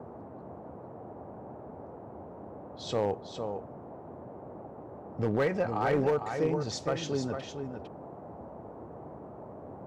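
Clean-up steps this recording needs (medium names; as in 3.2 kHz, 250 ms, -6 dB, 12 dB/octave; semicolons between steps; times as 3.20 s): clip repair -20.5 dBFS; noise print and reduce 30 dB; inverse comb 454 ms -7 dB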